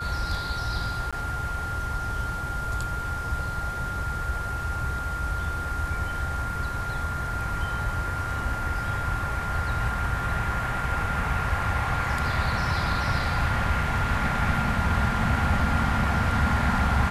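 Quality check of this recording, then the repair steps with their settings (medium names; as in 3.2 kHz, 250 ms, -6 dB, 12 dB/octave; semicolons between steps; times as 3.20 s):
whine 1.4 kHz -31 dBFS
1.11–1.13 s: dropout 16 ms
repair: band-stop 1.4 kHz, Q 30; interpolate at 1.11 s, 16 ms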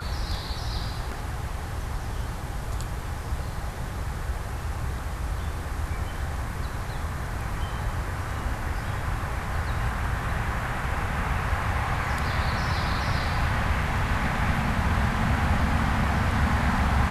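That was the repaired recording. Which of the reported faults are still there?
nothing left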